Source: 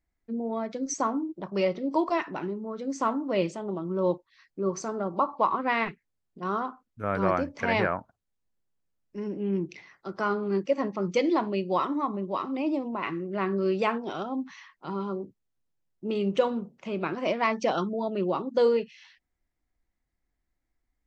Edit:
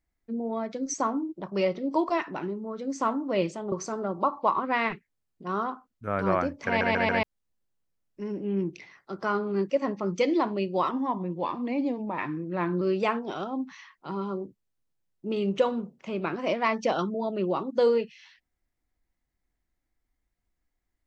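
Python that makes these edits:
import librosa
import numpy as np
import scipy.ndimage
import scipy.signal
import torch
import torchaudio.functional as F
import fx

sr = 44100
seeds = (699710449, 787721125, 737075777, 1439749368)

y = fx.edit(x, sr, fx.cut(start_s=3.72, length_s=0.96),
    fx.stutter_over(start_s=7.63, slice_s=0.14, count=4),
    fx.speed_span(start_s=11.87, length_s=1.73, speed=0.91), tone=tone)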